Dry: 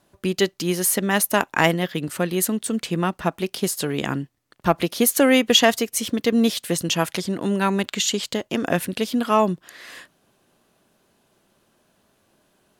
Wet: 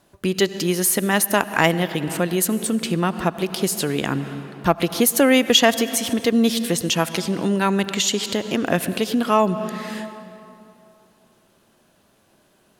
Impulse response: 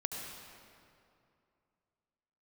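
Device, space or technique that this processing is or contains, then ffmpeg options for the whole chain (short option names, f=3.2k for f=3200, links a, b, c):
ducked reverb: -filter_complex "[0:a]asplit=3[a][b][c];[1:a]atrim=start_sample=2205[d];[b][d]afir=irnorm=-1:irlink=0[e];[c]apad=whole_len=564280[f];[e][f]sidechaincompress=threshold=-26dB:ratio=8:attack=9:release=166,volume=-5dB[g];[a][g]amix=inputs=2:normalize=0"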